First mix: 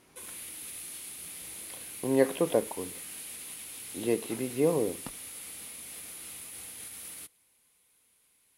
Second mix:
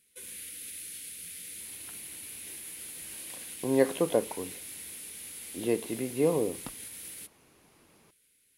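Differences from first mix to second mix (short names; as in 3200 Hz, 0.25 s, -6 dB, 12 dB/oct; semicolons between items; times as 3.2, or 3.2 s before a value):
speech: entry +1.60 s; background: add band shelf 870 Hz -14 dB 1.2 oct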